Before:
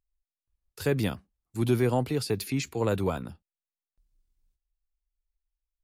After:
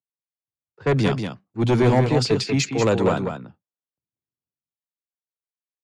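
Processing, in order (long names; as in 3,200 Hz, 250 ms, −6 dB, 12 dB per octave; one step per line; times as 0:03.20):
elliptic band-pass filter 120–7,100 Hz, stop band 50 dB
low-pass that shuts in the quiet parts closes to 930 Hz, open at −23.5 dBFS
sine wavefolder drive 6 dB, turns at −13 dBFS
on a send: single-tap delay 190 ms −5.5 dB
on the sum: multiband upward and downward expander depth 40%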